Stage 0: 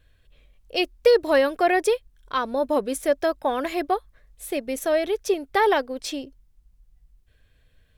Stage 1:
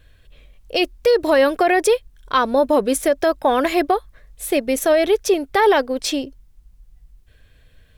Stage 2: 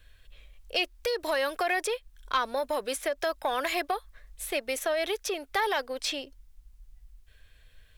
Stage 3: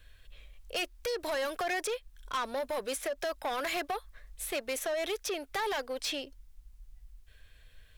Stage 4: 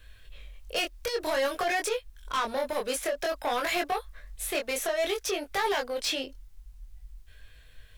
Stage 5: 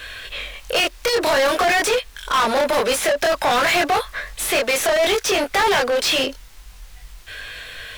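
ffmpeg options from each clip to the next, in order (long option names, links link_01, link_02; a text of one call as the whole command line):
ffmpeg -i in.wav -af "alimiter=level_in=15dB:limit=-1dB:release=50:level=0:latency=1,volume=-6.5dB" out.wav
ffmpeg -i in.wav -filter_complex "[0:a]acrossover=split=360|3900[link_01][link_02][link_03];[link_01]acompressor=threshold=-35dB:ratio=4[link_04];[link_02]acompressor=threshold=-18dB:ratio=4[link_05];[link_03]acompressor=threshold=-35dB:ratio=4[link_06];[link_04][link_05][link_06]amix=inputs=3:normalize=0,asoftclip=type=tanh:threshold=-9dB,equalizer=frequency=210:width=0.36:gain=-11.5,volume=-2dB" out.wav
ffmpeg -i in.wav -af "asoftclip=type=tanh:threshold=-28.5dB" out.wav
ffmpeg -i in.wav -af "flanger=delay=20:depth=4:speed=0.53,volume=7.5dB" out.wav
ffmpeg -i in.wav -filter_complex "[0:a]asplit=2[link_01][link_02];[link_02]highpass=frequency=720:poles=1,volume=25dB,asoftclip=type=tanh:threshold=-21dB[link_03];[link_01][link_03]amix=inputs=2:normalize=0,lowpass=frequency=4500:poles=1,volume=-6dB,volume=8.5dB" out.wav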